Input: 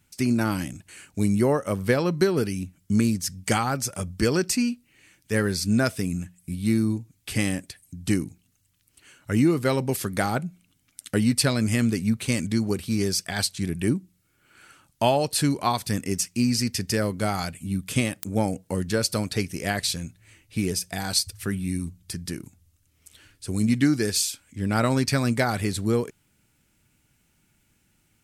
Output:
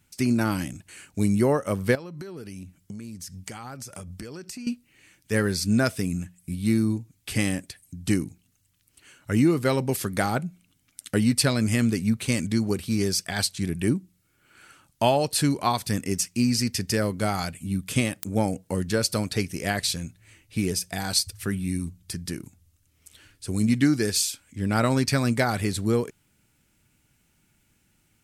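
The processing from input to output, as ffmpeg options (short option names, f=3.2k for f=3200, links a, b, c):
-filter_complex "[0:a]asettb=1/sr,asplit=3[a][b][c];[a]atrim=end=1.954[d];[b]atrim=start=1.95:end=4.67,asetpts=PTS-STARTPTS,afade=t=in:d=0.004:c=qsin,afade=t=out:st=2.716:d=0.004:c=qsin,acompressor=threshold=-34dB:ratio=16:attack=3.2:release=140:knee=1:detection=peak[e];[c]atrim=start=4.666[f];[d][e]acrossfade=d=0.004:c1=hsin:c2=qsin[g];[g][f]acrossfade=d=0.004:c1=qsin:c2=hsin"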